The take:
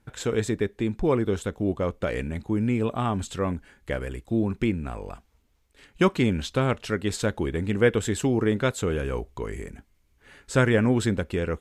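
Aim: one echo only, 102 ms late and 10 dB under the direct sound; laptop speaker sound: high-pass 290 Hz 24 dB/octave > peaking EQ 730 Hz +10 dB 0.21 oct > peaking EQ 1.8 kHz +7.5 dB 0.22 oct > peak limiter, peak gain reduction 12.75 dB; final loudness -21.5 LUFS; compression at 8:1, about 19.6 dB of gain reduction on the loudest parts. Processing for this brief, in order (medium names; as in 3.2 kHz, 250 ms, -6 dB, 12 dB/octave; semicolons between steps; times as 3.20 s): compression 8:1, threshold -36 dBFS; high-pass 290 Hz 24 dB/octave; peaking EQ 730 Hz +10 dB 0.21 oct; peaking EQ 1.8 kHz +7.5 dB 0.22 oct; delay 102 ms -10 dB; trim +25.5 dB; peak limiter -11 dBFS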